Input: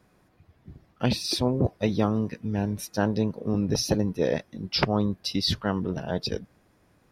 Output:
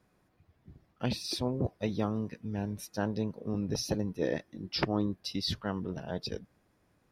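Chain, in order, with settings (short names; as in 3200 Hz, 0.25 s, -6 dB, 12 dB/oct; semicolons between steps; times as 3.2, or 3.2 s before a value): 4.22–5.15 small resonant body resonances 320/1800 Hz, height 8 dB; gain -7.5 dB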